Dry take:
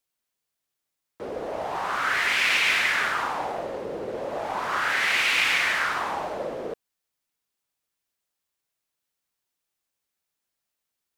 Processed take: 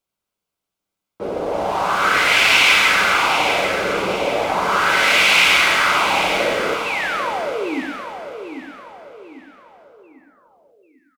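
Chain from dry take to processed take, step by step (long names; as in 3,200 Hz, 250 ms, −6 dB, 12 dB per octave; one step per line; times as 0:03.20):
notch filter 1,800 Hz, Q 5.1
in parallel at −7.5 dB: dead-zone distortion −43 dBFS
on the sum: sound drawn into the spectrogram fall, 0:06.85–0:07.82, 240–2,800 Hz −31 dBFS
repeating echo 795 ms, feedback 42%, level −8 dB
on a send at −4 dB: convolution reverb, pre-delay 5 ms
on the sum: one half of a high-frequency compander decoder only
level +5.5 dB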